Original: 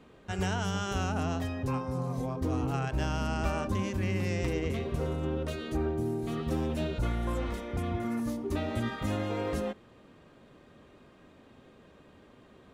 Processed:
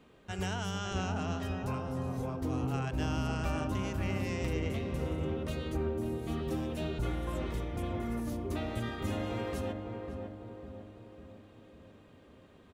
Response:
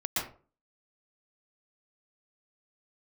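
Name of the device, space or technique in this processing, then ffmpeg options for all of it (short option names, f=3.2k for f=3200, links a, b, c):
presence and air boost: -filter_complex "[0:a]equalizer=f=2.9k:t=o:w=0.77:g=2.5,highshelf=f=10k:g=6,asettb=1/sr,asplit=3[a][b][c];[a]atrim=end=0.784[d];[b]atrim=start=0.78:end=1.43,asetpts=PTS-STARTPTS,afade=t=in:d=0.004:c=qsin,afade=t=out:st=0.646:d=0.004:c=qsin,lowpass=f=7.7k:w=0.5412,lowpass=f=7.7k:w=1.3066[e];[c]atrim=start=1.426[f];[d][e]acrossfade=d=0.004:c1=hsin:c2=qsin[g];[g][f]acrossfade=d=0.004:c1=qsin:c2=hsin,asplit=2[h][i];[i]adelay=551,lowpass=f=1.1k:p=1,volume=-4dB,asplit=2[j][k];[k]adelay=551,lowpass=f=1.1k:p=1,volume=0.55,asplit=2[l][m];[m]adelay=551,lowpass=f=1.1k:p=1,volume=0.55,asplit=2[n][o];[o]adelay=551,lowpass=f=1.1k:p=1,volume=0.55,asplit=2[p][q];[q]adelay=551,lowpass=f=1.1k:p=1,volume=0.55,asplit=2[r][s];[s]adelay=551,lowpass=f=1.1k:p=1,volume=0.55,asplit=2[t][u];[u]adelay=551,lowpass=f=1.1k:p=1,volume=0.55[v];[h][j][l][n][p][r][t][v]amix=inputs=8:normalize=0,volume=-4.5dB"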